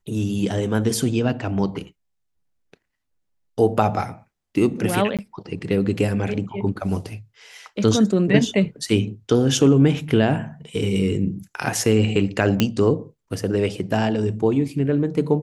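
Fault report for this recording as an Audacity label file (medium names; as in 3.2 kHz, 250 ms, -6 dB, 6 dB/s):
5.170000	5.190000	dropout 17 ms
12.600000	12.600000	pop -4 dBFS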